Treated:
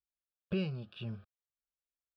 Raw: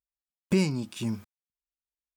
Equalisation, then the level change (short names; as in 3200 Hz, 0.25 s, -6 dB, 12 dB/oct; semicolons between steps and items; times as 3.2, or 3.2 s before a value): dynamic EQ 2800 Hz, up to +5 dB, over -50 dBFS, Q 3.1; air absorption 280 m; fixed phaser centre 1400 Hz, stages 8; -3.5 dB